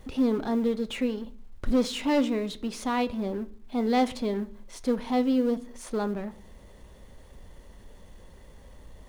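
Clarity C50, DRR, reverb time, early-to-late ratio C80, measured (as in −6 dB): 18.5 dB, 11.0 dB, 0.55 s, 23.0 dB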